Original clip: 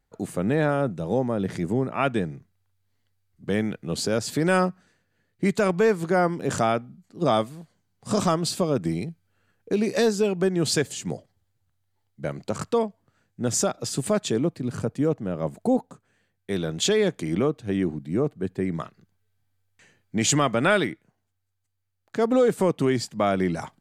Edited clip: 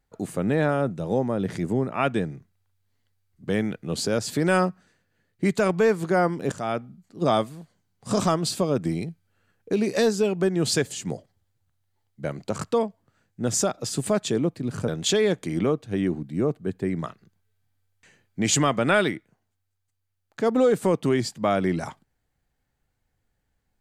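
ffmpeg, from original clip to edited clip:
ffmpeg -i in.wav -filter_complex "[0:a]asplit=3[link_01][link_02][link_03];[link_01]atrim=end=6.52,asetpts=PTS-STARTPTS,afade=type=out:start_time=6.516:duration=0.004:curve=hsin:silence=0.112202[link_04];[link_02]atrim=start=6.52:end=14.882,asetpts=PTS-STARTPTS,afade=type=in:duration=0.33:silence=0.112202[link_05];[link_03]atrim=start=16.638[link_06];[link_04][link_05]concat=n=2:v=0:a=1[link_07];[link_07][link_06]acrossfade=duration=0.004:curve1=hsin:curve2=hsin" out.wav

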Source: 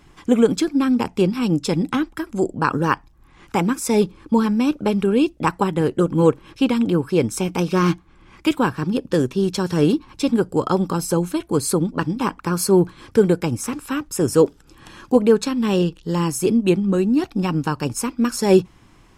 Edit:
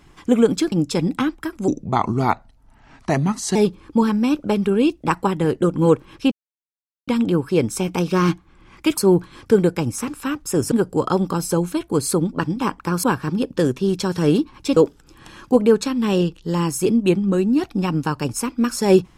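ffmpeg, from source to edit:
ffmpeg -i in.wav -filter_complex "[0:a]asplit=9[link_01][link_02][link_03][link_04][link_05][link_06][link_07][link_08][link_09];[link_01]atrim=end=0.722[link_10];[link_02]atrim=start=1.458:end=2.424[link_11];[link_03]atrim=start=2.42:end=3.92,asetpts=PTS-STARTPTS,asetrate=35280,aresample=44100[link_12];[link_04]atrim=start=3.916:end=6.68,asetpts=PTS-STARTPTS,afade=type=out:start_time=2.76:duration=0.004:curve=hsin,apad=pad_dur=0.76[link_13];[link_05]atrim=start=6.68:end=8.582,asetpts=PTS-STARTPTS,afade=type=in:duration=0.004:curve=hsin[link_14];[link_06]atrim=start=12.628:end=14.372[link_15];[link_07]atrim=start=10.308:end=12.632[link_16];[link_08]atrim=start=8.578:end=10.312[link_17];[link_09]atrim=start=14.368[link_18];[link_10][link_11]acrossfade=duration=0.004:curve1=hsin:curve2=hsin[link_19];[link_19][link_12]acrossfade=duration=0.004:curve1=hsin:curve2=hsin[link_20];[link_13][link_14]concat=n=2:v=0:a=1[link_21];[link_20][link_21]acrossfade=duration=0.004:curve1=hsin:curve2=hsin[link_22];[link_22][link_15]acrossfade=duration=0.004:curve1=hsin:curve2=hsin[link_23];[link_23][link_16]acrossfade=duration=0.004:curve1=hsin:curve2=hsin[link_24];[link_24][link_17]acrossfade=duration=0.004:curve1=hsin:curve2=hsin[link_25];[link_25][link_18]acrossfade=duration=0.004:curve1=hsin:curve2=hsin" out.wav

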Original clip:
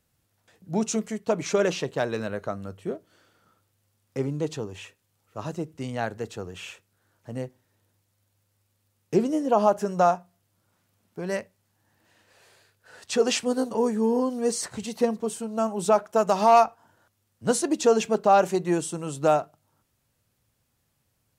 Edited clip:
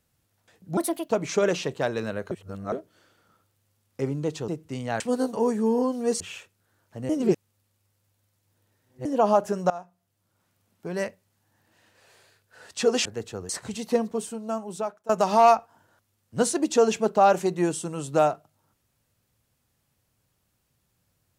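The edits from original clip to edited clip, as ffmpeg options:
ffmpeg -i in.wav -filter_complex "[0:a]asplit=14[link_01][link_02][link_03][link_04][link_05][link_06][link_07][link_08][link_09][link_10][link_11][link_12][link_13][link_14];[link_01]atrim=end=0.774[link_15];[link_02]atrim=start=0.77:end=1.26,asetpts=PTS-STARTPTS,asetrate=67032,aresample=44100,atrim=end_sample=14216,asetpts=PTS-STARTPTS[link_16];[link_03]atrim=start=1.256:end=2.482[link_17];[link_04]atrim=start=2.478:end=2.892,asetpts=PTS-STARTPTS,areverse[link_18];[link_05]atrim=start=2.888:end=4.652[link_19];[link_06]atrim=start=5.568:end=6.092[link_20];[link_07]atrim=start=13.378:end=14.582[link_21];[link_08]atrim=start=6.528:end=7.422[link_22];[link_09]atrim=start=7.418:end=9.382,asetpts=PTS-STARTPTS,areverse[link_23];[link_10]atrim=start=9.378:end=10.03,asetpts=PTS-STARTPTS,afade=type=out:start_time=0.648:duration=0.004:curve=hsin:silence=0.0891251[link_24];[link_11]atrim=start=10.03:end=13.382,asetpts=PTS-STARTPTS,afade=type=in:duration=1.21:curve=qsin:silence=0.0891251[link_25];[link_12]atrim=start=6.088:end=6.532[link_26];[link_13]atrim=start=14.578:end=16.18,asetpts=PTS-STARTPTS,afade=type=out:start_time=0.632:duration=0.97:silence=0.0794328[link_27];[link_14]atrim=start=16.18,asetpts=PTS-STARTPTS,afade=type=in:duration=0.004:curve=hsin:silence=0.0794328[link_28];[link_15][link_16]acrossfade=duration=0.004:curve1=hsin:curve2=hsin[link_29];[link_29][link_17]acrossfade=duration=0.004:curve1=hsin:curve2=hsin[link_30];[link_30][link_18]acrossfade=duration=0.004:curve1=hsin:curve2=hsin[link_31];[link_31][link_19]acrossfade=duration=0.004:curve1=hsin:curve2=hsin[link_32];[link_32][link_20]acrossfade=duration=0.004:curve1=hsin:curve2=hsin[link_33];[link_33][link_21]acrossfade=duration=0.004:curve1=hsin:curve2=hsin[link_34];[link_34][link_22]acrossfade=duration=0.004:curve1=hsin:curve2=hsin[link_35];[link_35][link_23]acrossfade=duration=0.004:curve1=hsin:curve2=hsin[link_36];[link_24][link_25]concat=n=2:v=0:a=1[link_37];[link_36][link_37]acrossfade=duration=0.004:curve1=hsin:curve2=hsin[link_38];[link_38][link_26]acrossfade=duration=0.004:curve1=hsin:curve2=hsin[link_39];[link_27][link_28]concat=n=2:v=0:a=1[link_40];[link_39][link_40]acrossfade=duration=0.004:curve1=hsin:curve2=hsin" out.wav

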